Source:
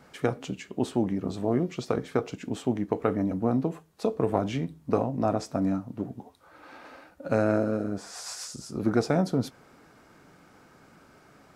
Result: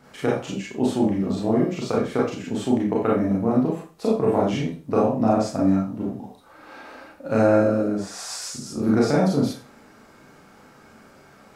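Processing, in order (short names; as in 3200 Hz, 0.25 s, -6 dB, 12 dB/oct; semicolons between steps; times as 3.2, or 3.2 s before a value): Schroeder reverb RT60 0.34 s, combs from 28 ms, DRR -4.5 dB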